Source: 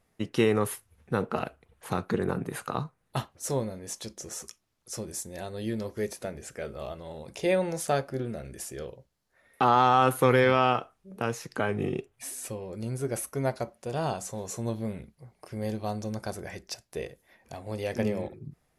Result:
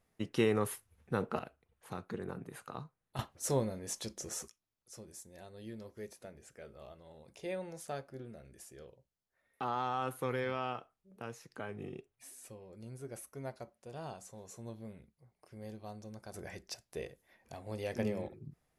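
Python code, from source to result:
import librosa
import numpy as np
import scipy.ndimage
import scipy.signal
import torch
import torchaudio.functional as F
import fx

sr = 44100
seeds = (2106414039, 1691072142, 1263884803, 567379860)

y = fx.gain(x, sr, db=fx.steps((0.0, -6.0), (1.39, -13.0), (3.19, -2.5), (4.48, -14.5), (16.34, -6.5)))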